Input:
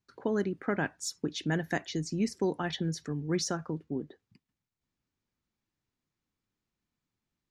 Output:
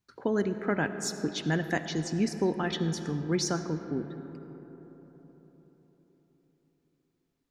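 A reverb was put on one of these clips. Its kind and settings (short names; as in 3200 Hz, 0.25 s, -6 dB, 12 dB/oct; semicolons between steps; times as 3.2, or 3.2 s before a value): digital reverb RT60 4.6 s, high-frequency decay 0.35×, pre-delay 35 ms, DRR 9 dB; gain +2 dB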